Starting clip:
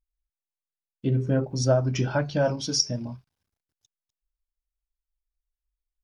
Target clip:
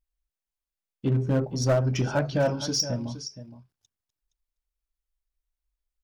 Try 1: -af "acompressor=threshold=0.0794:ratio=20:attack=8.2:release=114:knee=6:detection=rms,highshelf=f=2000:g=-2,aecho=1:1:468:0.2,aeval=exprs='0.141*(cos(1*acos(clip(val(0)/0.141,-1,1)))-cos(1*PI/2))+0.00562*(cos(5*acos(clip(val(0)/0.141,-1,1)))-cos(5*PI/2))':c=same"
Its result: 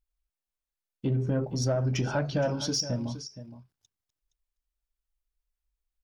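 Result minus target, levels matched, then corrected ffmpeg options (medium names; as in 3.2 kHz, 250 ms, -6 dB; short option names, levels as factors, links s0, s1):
compression: peak gain reduction +9 dB
-af "highshelf=f=2000:g=-2,aecho=1:1:468:0.2,aeval=exprs='0.141*(cos(1*acos(clip(val(0)/0.141,-1,1)))-cos(1*PI/2))+0.00562*(cos(5*acos(clip(val(0)/0.141,-1,1)))-cos(5*PI/2))':c=same"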